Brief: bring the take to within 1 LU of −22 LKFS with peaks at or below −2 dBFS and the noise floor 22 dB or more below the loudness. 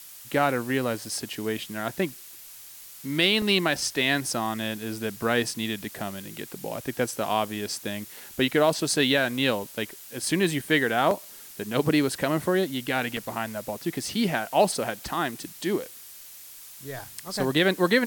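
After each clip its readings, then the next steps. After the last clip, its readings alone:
number of dropouts 4; longest dropout 1.6 ms; background noise floor −45 dBFS; target noise floor −48 dBFS; integrated loudness −26.0 LKFS; sample peak −9.0 dBFS; target loudness −22.0 LKFS
→ repair the gap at 0:03.42/0:09.63/0:11.11/0:13.17, 1.6 ms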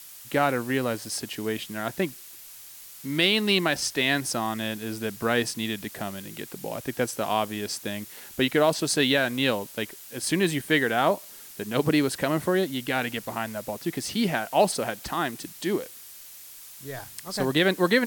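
number of dropouts 0; background noise floor −45 dBFS; target noise floor −48 dBFS
→ noise reduction from a noise print 6 dB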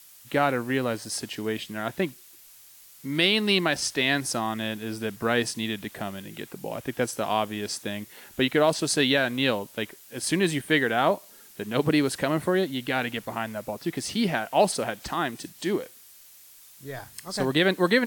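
background noise floor −51 dBFS; integrated loudness −26.5 LKFS; sample peak −9.0 dBFS; target loudness −22.0 LKFS
→ level +4.5 dB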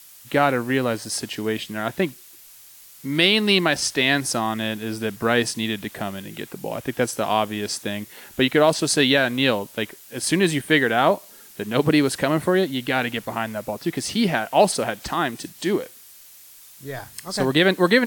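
integrated loudness −22.0 LKFS; sample peak −4.5 dBFS; background noise floor −47 dBFS

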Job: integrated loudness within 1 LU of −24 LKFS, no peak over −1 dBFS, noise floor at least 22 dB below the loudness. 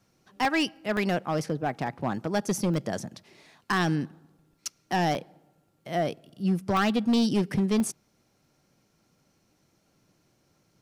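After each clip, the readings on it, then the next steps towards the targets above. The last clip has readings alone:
share of clipped samples 1.2%; peaks flattened at −19.0 dBFS; number of dropouts 7; longest dropout 1.2 ms; integrated loudness −28.0 LKFS; sample peak −19.0 dBFS; target loudness −24.0 LKFS
→ clipped peaks rebuilt −19 dBFS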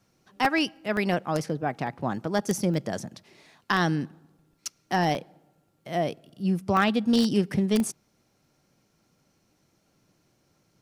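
share of clipped samples 0.0%; number of dropouts 7; longest dropout 1.2 ms
→ repair the gap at 0:00.45/0:00.97/0:01.87/0:02.74/0:05.15/0:06.77/0:07.80, 1.2 ms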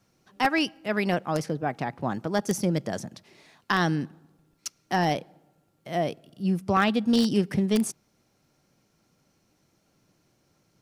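number of dropouts 0; integrated loudness −26.5 LKFS; sample peak −10.0 dBFS; target loudness −24.0 LKFS
→ level +2.5 dB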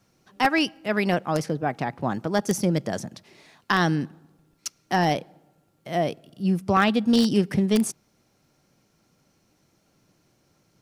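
integrated loudness −24.0 LKFS; sample peak −7.5 dBFS; background noise floor −67 dBFS

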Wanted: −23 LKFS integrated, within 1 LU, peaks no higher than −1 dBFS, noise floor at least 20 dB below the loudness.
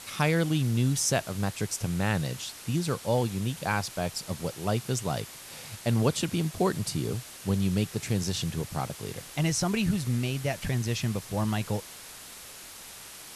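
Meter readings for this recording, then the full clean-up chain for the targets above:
background noise floor −45 dBFS; target noise floor −49 dBFS; integrated loudness −29.0 LKFS; sample peak −11.0 dBFS; target loudness −23.0 LKFS
→ broadband denoise 6 dB, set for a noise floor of −45 dBFS
level +6 dB

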